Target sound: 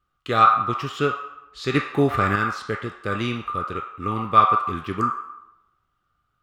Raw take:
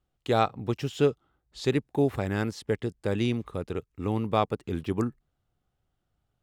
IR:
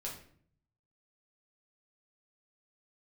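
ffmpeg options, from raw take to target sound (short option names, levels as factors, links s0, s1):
-filter_complex "[0:a]asplit=2[s0][s1];[s1]highpass=f=1200:t=q:w=12[s2];[1:a]atrim=start_sample=2205,asetrate=25137,aresample=44100,lowpass=6000[s3];[s2][s3]afir=irnorm=-1:irlink=0,volume=0.794[s4];[s0][s4]amix=inputs=2:normalize=0,asettb=1/sr,asplit=3[s5][s6][s7];[s5]atrim=end=1.744[s8];[s6]atrim=start=1.74:end=2.36,asetpts=PTS-STARTPTS,afade=t=in:d=0.004:c=qsin,afade=t=out:st=0.616:d=0.004:c=qsin,acontrast=35[s9];[s7]atrim=start=2.356[s10];[s8][s9]acrossfade=d=0.004:c1=hsin:c2=qsin[s11];[s11][s10]acrossfade=d=0.004:c1=qsin:c2=hsin"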